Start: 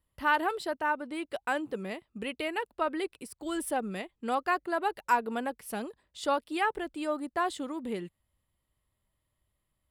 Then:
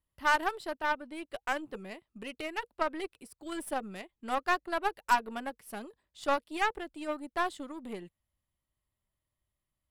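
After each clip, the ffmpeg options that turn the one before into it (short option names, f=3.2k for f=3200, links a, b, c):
-af "aeval=exprs='0.211*(cos(1*acos(clip(val(0)/0.211,-1,1)))-cos(1*PI/2))+0.0106*(cos(6*acos(clip(val(0)/0.211,-1,1)))-cos(6*PI/2))+0.0168*(cos(7*acos(clip(val(0)/0.211,-1,1)))-cos(7*PI/2))':c=same,bandreject=f=480:w=12"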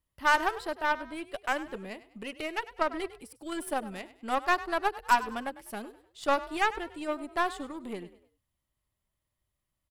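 -filter_complex "[0:a]asplit=4[a][b][c][d];[b]adelay=100,afreqshift=37,volume=-16dB[e];[c]adelay=200,afreqshift=74,volume=-24.4dB[f];[d]adelay=300,afreqshift=111,volume=-32.8dB[g];[a][e][f][g]amix=inputs=4:normalize=0,volume=2.5dB"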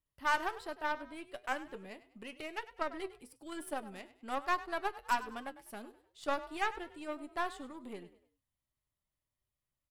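-af "flanger=delay=6.4:depth=2:regen=73:speed=1.1:shape=triangular,volume=-3dB"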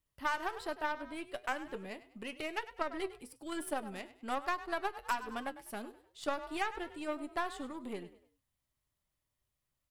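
-af "acompressor=threshold=-34dB:ratio=6,volume=4dB"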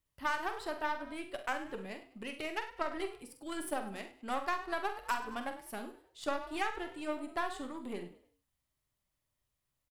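-af "aecho=1:1:46|68:0.335|0.188"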